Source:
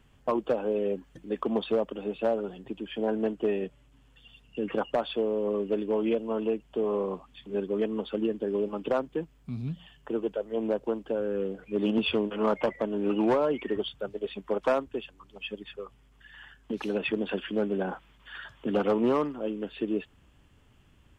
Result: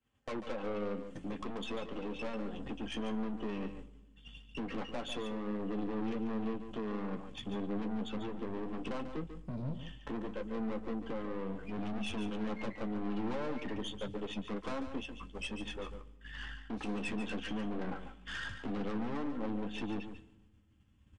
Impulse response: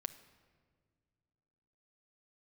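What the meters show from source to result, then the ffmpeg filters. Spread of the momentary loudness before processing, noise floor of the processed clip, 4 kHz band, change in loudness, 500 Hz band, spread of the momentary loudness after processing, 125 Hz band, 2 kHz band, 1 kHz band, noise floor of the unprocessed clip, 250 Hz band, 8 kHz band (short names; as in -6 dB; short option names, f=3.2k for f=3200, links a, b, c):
12 LU, -62 dBFS, -5.5 dB, -9.5 dB, -13.5 dB, 6 LU, -3.0 dB, -4.5 dB, -8.5 dB, -60 dBFS, -6.5 dB, n/a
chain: -filter_complex "[0:a]highpass=f=41:w=0.5412,highpass=f=41:w=1.3066,agate=range=-33dB:threshold=-48dB:ratio=3:detection=peak,lowshelf=f=170:g=-5,aecho=1:1:3.8:0.34,asubboost=boost=4:cutoff=250,acompressor=threshold=-41dB:ratio=2.5,aeval=exprs='(tanh(158*val(0)+0.5)-tanh(0.5))/158':c=same,flanger=delay=8.9:depth=5.2:regen=-39:speed=0.15:shape=sinusoidal,asplit=2[a][b];[1:a]atrim=start_sample=2205,asetrate=74970,aresample=44100,adelay=143[c];[b][c]afir=irnorm=-1:irlink=0,volume=-3dB[d];[a][d]amix=inputs=2:normalize=0,aresample=22050,aresample=44100,volume=11.5dB"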